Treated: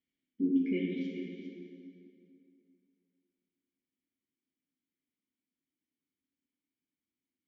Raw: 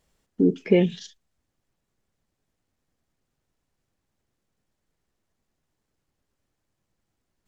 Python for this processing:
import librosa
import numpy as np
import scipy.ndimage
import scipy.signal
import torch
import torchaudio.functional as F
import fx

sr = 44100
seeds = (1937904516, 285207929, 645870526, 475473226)

y = fx.vowel_filter(x, sr, vowel='i')
y = y + 10.0 ** (-10.5 / 20.0) * np.pad(y, (int(404 * sr / 1000.0), 0))[:len(y)]
y = fx.rev_plate(y, sr, seeds[0], rt60_s=2.7, hf_ratio=0.7, predelay_ms=0, drr_db=-2.0)
y = F.gain(torch.from_numpy(y), -5.0).numpy()